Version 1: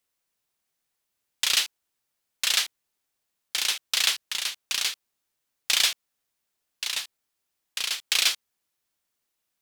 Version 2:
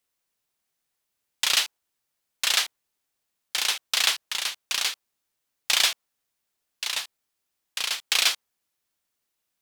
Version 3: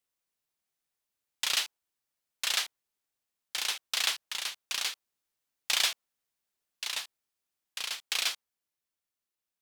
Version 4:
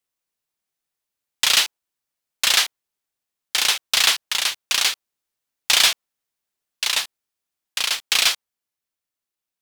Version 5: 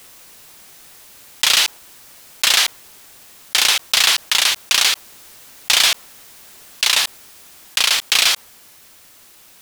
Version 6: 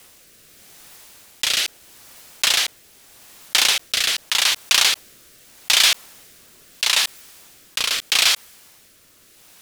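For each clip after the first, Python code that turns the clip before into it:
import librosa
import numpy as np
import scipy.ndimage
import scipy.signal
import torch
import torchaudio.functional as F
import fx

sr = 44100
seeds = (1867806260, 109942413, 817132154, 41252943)

y1 = fx.dynamic_eq(x, sr, hz=830.0, q=0.73, threshold_db=-44.0, ratio=4.0, max_db=6)
y2 = fx.rider(y1, sr, range_db=10, speed_s=2.0)
y2 = F.gain(torch.from_numpy(y2), -7.5).numpy()
y3 = fx.leveller(y2, sr, passes=2)
y3 = F.gain(torch.from_numpy(y3), 6.0).numpy()
y4 = fx.env_flatten(y3, sr, amount_pct=70)
y5 = fx.rotary(y4, sr, hz=0.8)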